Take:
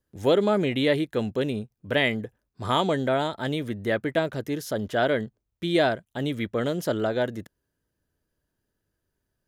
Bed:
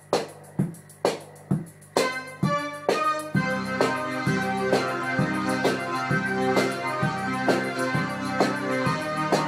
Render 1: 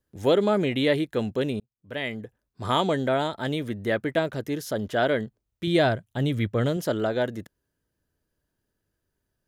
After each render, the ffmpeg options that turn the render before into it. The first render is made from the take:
-filter_complex "[0:a]asettb=1/sr,asplit=3[a][b][c];[a]atrim=end=5.674[d];[b]atrim=start=5.67:end=6.77,asetpts=PTS-STARTPTS,afade=t=in:d=0.004:c=qsin,afade=t=out:st=1.096:d=0.004:c=qsin,equalizer=f=110:t=o:w=1:g=10[e];[c]atrim=start=6.766[f];[d][e]acrossfade=d=0.004:c1=hsin:c2=qsin[g];[g][f]acrossfade=d=0.004:c1=qsin:c2=hsin,asplit=2[h][i];[h]atrim=end=1.6,asetpts=PTS-STARTPTS,afade=t=out:st=1.596:d=0.004:c=hsin[j];[i]atrim=start=1.6,asetpts=PTS-STARTPTS,afade=t=in:d=1.05[k];[j][k]concat=n=2:v=0:a=1"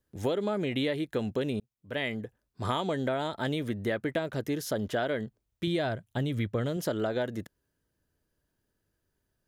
-af "acompressor=threshold=-26dB:ratio=10"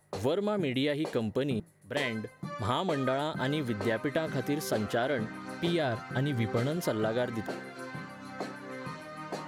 -filter_complex "[1:a]volume=-15.5dB[a];[0:a][a]amix=inputs=2:normalize=0"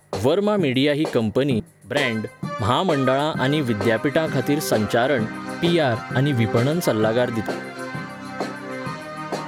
-af "volume=10.5dB"

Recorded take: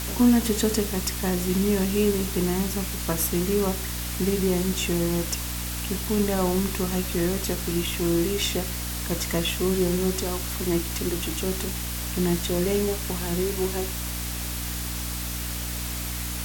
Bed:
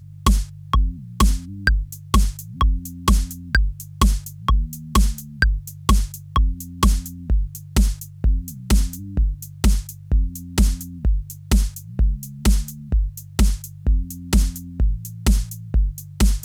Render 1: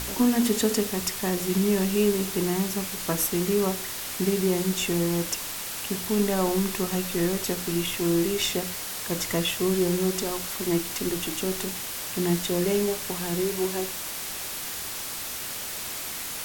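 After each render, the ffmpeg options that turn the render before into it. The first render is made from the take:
-af "bandreject=f=60:t=h:w=4,bandreject=f=120:t=h:w=4,bandreject=f=180:t=h:w=4,bandreject=f=240:t=h:w=4,bandreject=f=300:t=h:w=4"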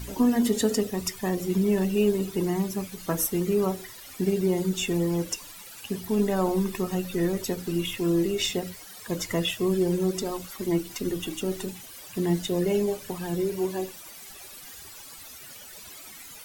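-af "afftdn=nr=15:nf=-34"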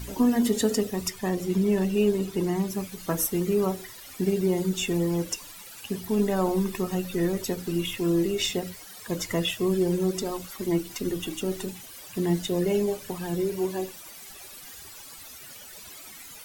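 -filter_complex "[0:a]asettb=1/sr,asplit=3[a][b][c];[a]atrim=end=1.104[d];[b]atrim=start=1.1:end=2.68,asetpts=PTS-STARTPTS,afade=t=in:d=0.004:c=qsin,afade=t=out:st=1.576:d=0.004:c=qsin,highshelf=f=11k:g=-6[e];[c]atrim=start=2.676[f];[d][e]acrossfade=d=0.004:c1=hsin:c2=qsin[g];[g][f]acrossfade=d=0.004:c1=qsin:c2=hsin"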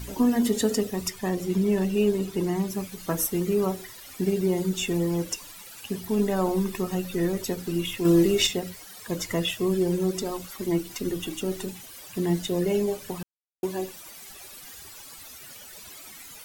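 -filter_complex "[0:a]asplit=5[a][b][c][d][e];[a]atrim=end=8.052[f];[b]atrim=start=8.048:end=8.472,asetpts=PTS-STARTPTS,volume=5dB[g];[c]atrim=start=8.468:end=13.23,asetpts=PTS-STARTPTS,afade=t=out:st=4.758:d=0.004:c=hsin[h];[d]atrim=start=13.23:end=13.63,asetpts=PTS-STARTPTS,volume=0[i];[e]atrim=start=13.63,asetpts=PTS-STARTPTS,afade=t=in:d=0.004:c=hsin[j];[f][g]acrossfade=d=0.004:c1=hsin:c2=hsin[k];[h][i][j]concat=n=3:v=0:a=1[l];[k][l]acrossfade=d=0.004:c1=hsin:c2=hsin"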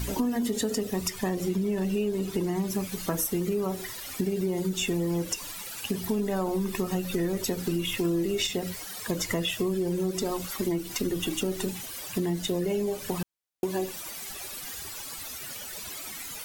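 -filter_complex "[0:a]asplit=2[a][b];[b]alimiter=limit=-21dB:level=0:latency=1,volume=-1dB[c];[a][c]amix=inputs=2:normalize=0,acompressor=threshold=-25dB:ratio=6"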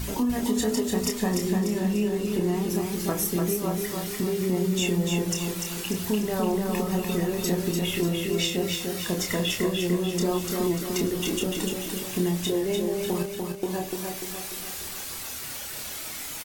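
-filter_complex "[0:a]asplit=2[a][b];[b]adelay=28,volume=-5dB[c];[a][c]amix=inputs=2:normalize=0,aecho=1:1:295|590|885|1180|1475|1770|2065:0.631|0.322|0.164|0.0837|0.0427|0.0218|0.0111"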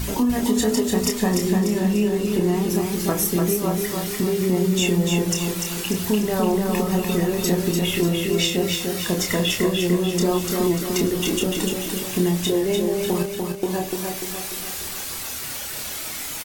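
-af "volume=5dB"

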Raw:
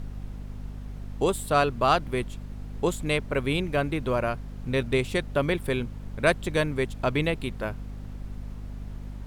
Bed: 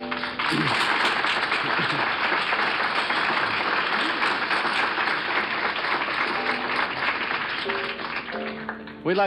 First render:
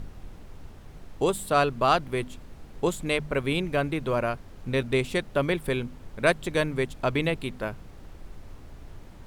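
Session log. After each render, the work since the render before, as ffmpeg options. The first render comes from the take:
-af "bandreject=f=50:t=h:w=4,bandreject=f=100:t=h:w=4,bandreject=f=150:t=h:w=4,bandreject=f=200:t=h:w=4,bandreject=f=250:t=h:w=4"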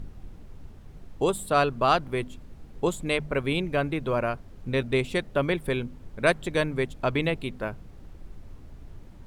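-af "afftdn=nr=6:nf=-46"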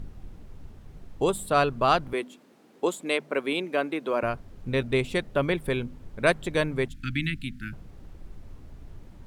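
-filter_complex "[0:a]asettb=1/sr,asplit=3[a][b][c];[a]atrim=end=2.134[d];[b]atrim=start=2.13:end=4.23,asetpts=PTS-STARTPTS,afade=t=in:d=0.004:c=qsin,afade=t=out:st=2.096:d=0.004:c=qsin,highpass=f=240:w=0.5412,highpass=f=240:w=1.3066[e];[c]atrim=start=4.226[f];[d][e]acrossfade=d=0.004:c1=hsin:c2=qsin[g];[g][f]acrossfade=d=0.004:c1=qsin:c2=hsin,asettb=1/sr,asplit=3[h][i][j];[h]atrim=end=6.884[k];[i]atrim=start=6.88:end=7.73,asetpts=PTS-STARTPTS,afade=t=in:d=0.004:c=qsin,afade=t=out:st=0.846:d=0.004:c=qsin,asuperstop=centerf=660:order=12:qfactor=0.57[l];[j]atrim=start=7.726[m];[k][l]acrossfade=d=0.004:c1=hsin:c2=qsin[n];[n][m]acrossfade=d=0.004:c1=qsin:c2=hsin"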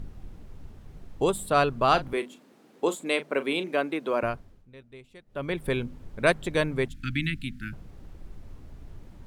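-filter_complex "[0:a]asettb=1/sr,asplit=3[a][b][c];[a]atrim=end=1.884[d];[b]atrim=start=1.88:end=3.74,asetpts=PTS-STARTPTS,afade=t=in:d=0.004:c=qsin,afade=t=out:st=1.856:d=0.004:c=qsin,asplit=2[e][f];[f]adelay=37,volume=-12.5dB[g];[e][g]amix=inputs=2:normalize=0,atrim=end_sample=82026[h];[c]atrim=start=3.736[i];[d][h]acrossfade=d=0.004:c1=hsin:c2=qsin[j];[j][i]acrossfade=d=0.004:c1=qsin:c2=hsin,asplit=3[k][l][m];[k]atrim=end=4.67,asetpts=PTS-STARTPTS,afade=t=out:st=4.24:d=0.43:silence=0.0707946[n];[l]atrim=start=4.67:end=5.26,asetpts=PTS-STARTPTS,volume=-23dB[o];[m]atrim=start=5.26,asetpts=PTS-STARTPTS,afade=t=in:d=0.43:silence=0.0707946[p];[n][o][p]concat=n=3:v=0:a=1"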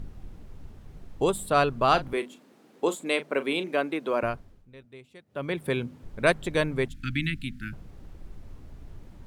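-filter_complex "[0:a]asettb=1/sr,asplit=3[a][b][c];[a]atrim=end=4.854[d];[b]atrim=start=4.85:end=6.04,asetpts=PTS-STARTPTS,afade=t=in:d=0.004:c=qsin,afade=t=out:st=1.186:d=0.004:c=qsin,highpass=f=90:w=0.5412,highpass=f=90:w=1.3066[e];[c]atrim=start=6.036[f];[d][e]acrossfade=d=0.004:c1=hsin:c2=qsin[g];[g][f]acrossfade=d=0.004:c1=qsin:c2=hsin"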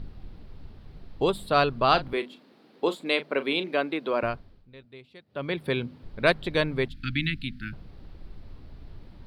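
-af "highshelf=f=5.5k:t=q:w=3:g=-7.5"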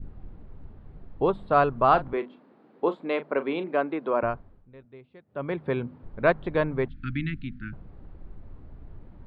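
-af "lowpass=1.5k,adynamicequalizer=threshold=0.01:dfrequency=990:dqfactor=1.1:tfrequency=990:tqfactor=1.1:attack=5:release=100:ratio=0.375:range=2:mode=boostabove:tftype=bell"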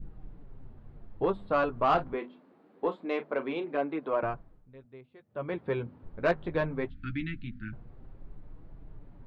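-af "flanger=delay=5.9:depth=6.2:regen=-28:speed=0.23:shape=triangular,asoftclip=type=tanh:threshold=-16dB"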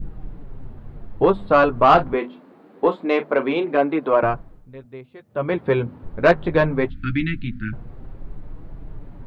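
-af "volume=12dB"

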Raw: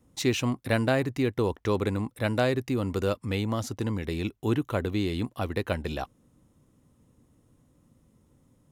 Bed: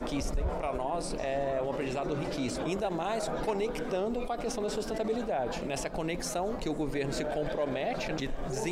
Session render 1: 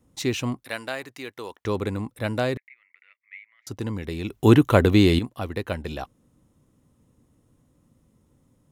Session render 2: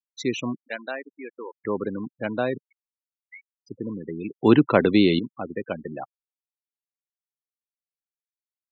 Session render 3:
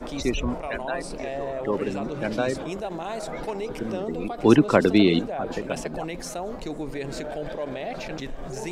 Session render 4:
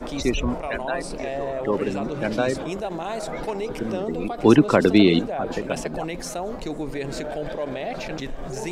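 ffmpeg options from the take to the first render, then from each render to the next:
-filter_complex "[0:a]asettb=1/sr,asplit=3[a][b][c];[a]atrim=end=0.644[d];[b]atrim=start=0.64:end=1.65,asetpts=PTS-STARTPTS,afade=t=in:d=0.004:c=qsin,afade=t=out:st=1.006:d=0.004:c=qsin,highpass=f=1.3k:p=1[e];[c]atrim=start=1.646[f];[d][e]acrossfade=d=0.004:c1=hsin:c2=qsin[g];[g][f]acrossfade=d=0.004:c1=qsin:c2=hsin,asettb=1/sr,asplit=3[h][i][j];[h]atrim=end=2.574[k];[i]atrim=start=2.57:end=3.67,asetpts=PTS-STARTPTS,afade=t=in:d=0.004:c=qsin,afade=t=out:st=1.096:d=0.004:c=qsin,asuperpass=centerf=2100:order=4:qfactor=5.6[l];[j]atrim=start=3.666[m];[k][l]acrossfade=d=0.004:c1=hsin:c2=qsin[n];[n][m]acrossfade=d=0.004:c1=qsin:c2=hsin,asplit=3[o][p][q];[o]atrim=end=4.302[r];[p]atrim=start=4.298:end=5.192,asetpts=PTS-STARTPTS,volume=11.5dB[s];[q]atrim=start=5.188[t];[r][s]acrossfade=d=0.004:c1=hsin:c2=hsin[u];[u][t]acrossfade=d=0.004:c1=hsin:c2=hsin"
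-af "afftfilt=real='re*gte(hypot(re,im),0.0447)':imag='im*gte(hypot(re,im),0.0447)':win_size=1024:overlap=0.75,highpass=f=150:w=0.5412,highpass=f=150:w=1.3066"
-filter_complex "[1:a]volume=0dB[a];[0:a][a]amix=inputs=2:normalize=0"
-af "volume=2.5dB,alimiter=limit=-3dB:level=0:latency=1"

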